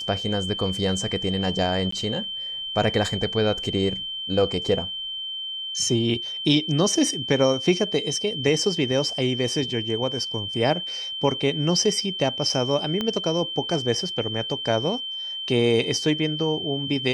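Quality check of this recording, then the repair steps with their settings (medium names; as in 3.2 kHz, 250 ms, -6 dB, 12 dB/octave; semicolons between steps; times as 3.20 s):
whine 3.1 kHz -29 dBFS
1.91–1.92 s: dropout 14 ms
13.01 s: pop -13 dBFS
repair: de-click; band-stop 3.1 kHz, Q 30; interpolate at 1.91 s, 14 ms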